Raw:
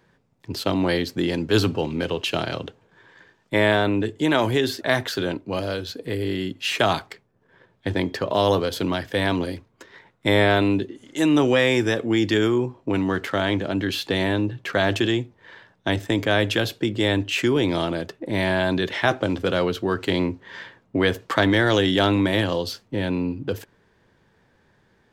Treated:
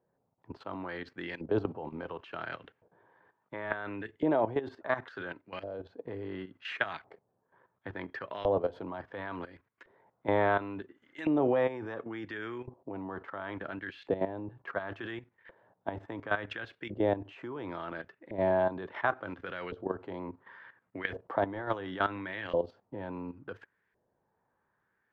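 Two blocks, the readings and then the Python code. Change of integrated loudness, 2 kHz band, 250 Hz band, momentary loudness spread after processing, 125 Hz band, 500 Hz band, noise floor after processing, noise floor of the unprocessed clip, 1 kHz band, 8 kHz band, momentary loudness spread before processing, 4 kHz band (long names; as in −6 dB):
−12.5 dB, −12.5 dB, −15.0 dB, 14 LU, −17.5 dB, −10.0 dB, −78 dBFS, −63 dBFS, −8.5 dB, below −35 dB, 10 LU, −23.5 dB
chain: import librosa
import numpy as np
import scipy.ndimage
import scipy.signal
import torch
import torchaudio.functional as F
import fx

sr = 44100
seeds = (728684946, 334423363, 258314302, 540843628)

y = fx.filter_lfo_bandpass(x, sr, shape='saw_up', hz=0.71, low_hz=600.0, high_hz=2100.0, q=2.0)
y = fx.riaa(y, sr, side='playback')
y = fx.level_steps(y, sr, step_db=13)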